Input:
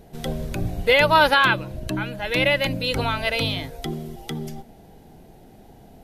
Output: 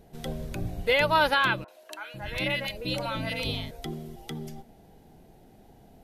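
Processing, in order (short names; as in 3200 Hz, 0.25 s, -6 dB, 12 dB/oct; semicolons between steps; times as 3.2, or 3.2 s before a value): 1.64–3.71 three bands offset in time mids, highs, lows 40/500 ms, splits 550/1900 Hz; gain -6.5 dB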